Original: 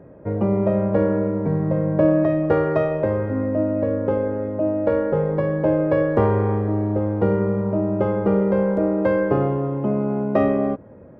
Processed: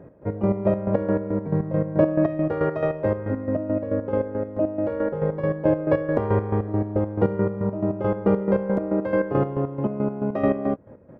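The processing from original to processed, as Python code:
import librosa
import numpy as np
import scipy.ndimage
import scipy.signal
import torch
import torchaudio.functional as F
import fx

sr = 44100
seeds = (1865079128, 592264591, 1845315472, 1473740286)

y = fx.chopper(x, sr, hz=4.6, depth_pct=65, duty_pct=40)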